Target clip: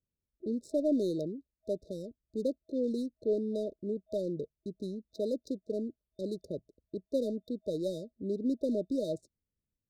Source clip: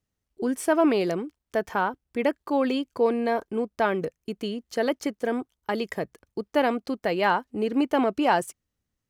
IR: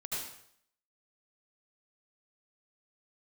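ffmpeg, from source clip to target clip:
-af "adynamicsmooth=sensitivity=7.5:basefreq=1900,asetrate=40517,aresample=44100,afftfilt=real='re*(1-between(b*sr/4096,640,3600))':imag='im*(1-between(b*sr/4096,640,3600))':win_size=4096:overlap=0.75,volume=0.422"

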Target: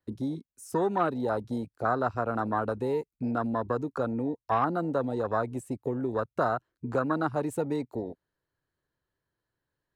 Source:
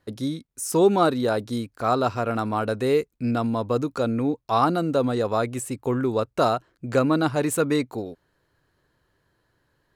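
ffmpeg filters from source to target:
-filter_complex "[0:a]afwtdn=0.0501,acrossover=split=220|800[s0][s1][s2];[s0]acompressor=threshold=0.0126:ratio=4[s3];[s1]acompressor=threshold=0.0282:ratio=4[s4];[s2]acompressor=threshold=0.0501:ratio=4[s5];[s3][s4][s5]amix=inputs=3:normalize=0"

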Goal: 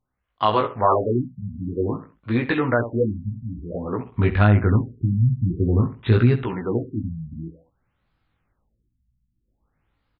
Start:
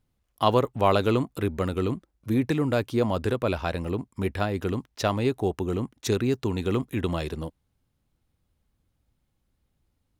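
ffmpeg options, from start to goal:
-filter_complex "[0:a]asettb=1/sr,asplit=3[s0][s1][s2];[s0]atrim=end=4.054[s3];[s1]atrim=start=4.05:end=6.44,asetpts=PTS-STARTPTS,afade=t=in:d=0.004:c=qsin,afade=t=out:st=2.386:d=0.004:c=qsin,bass=f=250:g=15,treble=f=4000:g=-6[s4];[s2]atrim=start=6.436[s5];[s3][s4]acrossfade=d=0.004:c1=hsin:c2=qsin[s6];[s6][s5]acrossfade=d=0.004:c1=qsin:c2=hsin,aecho=1:1:67|134|201:0.224|0.0672|0.0201,flanger=delay=16:depth=3.3:speed=0.77,dynaudnorm=f=140:g=5:m=2.51,equalizer=f=1500:w=0.63:g=11.5,alimiter=level_in=1.12:limit=0.891:release=50:level=0:latency=1,afftfilt=real='re*lt(b*sr/1024,230*pow(5200/230,0.5+0.5*sin(2*PI*0.52*pts/sr)))':imag='im*lt(b*sr/1024,230*pow(5200/230,0.5+0.5*sin(2*PI*0.52*pts/sr)))':win_size=1024:overlap=0.75,volume=0.562"

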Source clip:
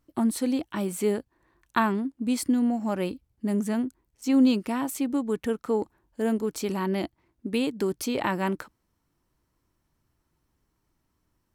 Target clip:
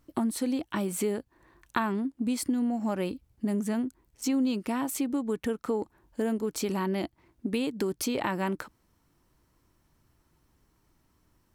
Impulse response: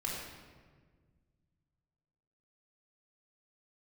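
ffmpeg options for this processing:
-af "acompressor=threshold=0.0178:ratio=3,volume=2"

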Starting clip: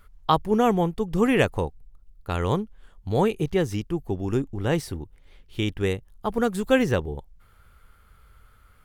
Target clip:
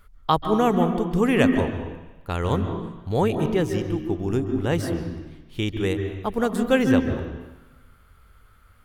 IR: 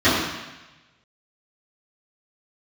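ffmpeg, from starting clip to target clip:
-filter_complex "[0:a]asplit=2[s0][s1];[1:a]atrim=start_sample=2205,adelay=133[s2];[s1][s2]afir=irnorm=-1:irlink=0,volume=0.0316[s3];[s0][s3]amix=inputs=2:normalize=0"

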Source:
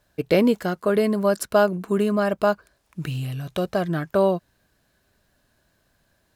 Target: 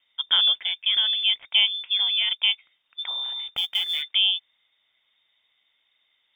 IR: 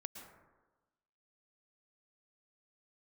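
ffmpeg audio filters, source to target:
-filter_complex "[0:a]lowpass=f=3100:t=q:w=0.5098,lowpass=f=3100:t=q:w=0.6013,lowpass=f=3100:t=q:w=0.9,lowpass=f=3100:t=q:w=2.563,afreqshift=-3700,asplit=3[s0][s1][s2];[s0]afade=t=out:st=3.55:d=0.02[s3];[s1]acrusher=bits=5:mode=log:mix=0:aa=0.000001,afade=t=in:st=3.55:d=0.02,afade=t=out:st=4.01:d=0.02[s4];[s2]afade=t=in:st=4.01:d=0.02[s5];[s3][s4][s5]amix=inputs=3:normalize=0,volume=0.75"

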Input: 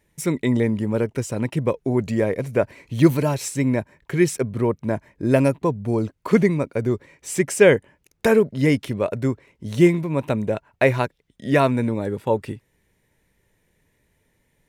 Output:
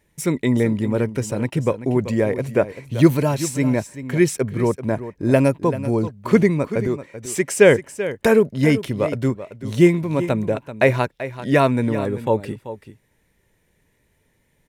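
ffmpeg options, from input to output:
-filter_complex "[0:a]asettb=1/sr,asplit=3[s0][s1][s2];[s0]atrim=end=6.874[s3];[s1]atrim=start=6.87:end=7.5,asetpts=PTS-STARTPTS,afade=t=in:d=0.004:c=qsin,afade=t=out:st=0.626:d=0.004:c=qsin,highpass=f=260:p=1[s4];[s2]atrim=start=7.496[s5];[s3][s4]acrossfade=d=0.004:c1=hsin:c2=qsin[s6];[s6][s5]acrossfade=d=0.004:c1=qsin:c2=hsin,aecho=1:1:386:0.224,volume=1.19"

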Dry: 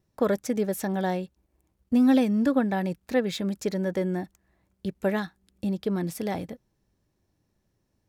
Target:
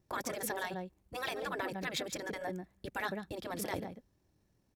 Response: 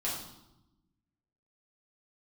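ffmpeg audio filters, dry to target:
-filter_complex "[0:a]asplit=2[s0][s1];[s1]adelay=244.9,volume=0.224,highshelf=f=4000:g=-5.51[s2];[s0][s2]amix=inputs=2:normalize=0,atempo=1.7,afftfilt=real='re*lt(hypot(re,im),0.158)':imag='im*lt(hypot(re,im),0.158)':win_size=1024:overlap=0.75"

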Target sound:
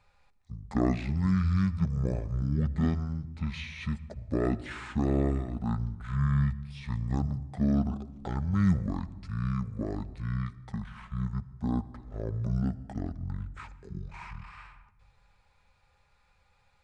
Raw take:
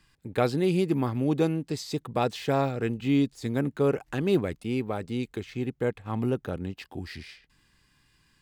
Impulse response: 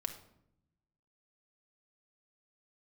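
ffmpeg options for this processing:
-filter_complex "[0:a]asplit=2[s0][s1];[1:a]atrim=start_sample=2205,asetrate=40131,aresample=44100,lowshelf=f=180:g=7.5[s2];[s1][s2]afir=irnorm=-1:irlink=0,volume=0.562[s3];[s0][s3]amix=inputs=2:normalize=0,asetrate=22050,aresample=44100,volume=0.447"

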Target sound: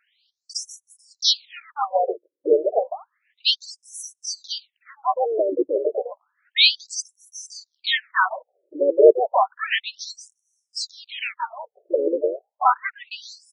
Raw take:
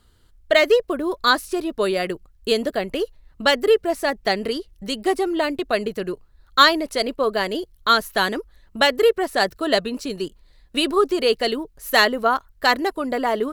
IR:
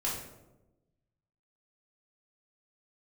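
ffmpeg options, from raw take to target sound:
-filter_complex "[0:a]asplit=3[s0][s1][s2];[s1]asetrate=35002,aresample=44100,atempo=1.25992,volume=0.251[s3];[s2]asetrate=58866,aresample=44100,atempo=0.749154,volume=0.631[s4];[s0][s3][s4]amix=inputs=3:normalize=0,afftfilt=real='re*between(b*sr/1024,410*pow(8000/410,0.5+0.5*sin(2*PI*0.31*pts/sr))/1.41,410*pow(8000/410,0.5+0.5*sin(2*PI*0.31*pts/sr))*1.41)':imag='im*between(b*sr/1024,410*pow(8000/410,0.5+0.5*sin(2*PI*0.31*pts/sr))/1.41,410*pow(8000/410,0.5+0.5*sin(2*PI*0.31*pts/sr))*1.41)':win_size=1024:overlap=0.75,volume=1.5"

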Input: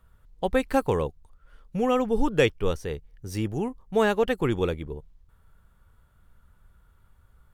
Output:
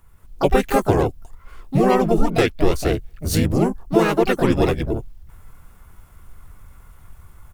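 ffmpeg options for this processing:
-filter_complex "[0:a]dynaudnorm=f=160:g=3:m=2.51,highshelf=f=11000:g=11,acompressor=threshold=0.141:ratio=8,asplit=4[s0][s1][s2][s3];[s1]asetrate=33038,aresample=44100,atempo=1.33484,volume=0.708[s4];[s2]asetrate=35002,aresample=44100,atempo=1.25992,volume=0.708[s5];[s3]asetrate=66075,aresample=44100,atempo=0.66742,volume=0.501[s6];[s0][s4][s5][s6]amix=inputs=4:normalize=0,volume=1.19"

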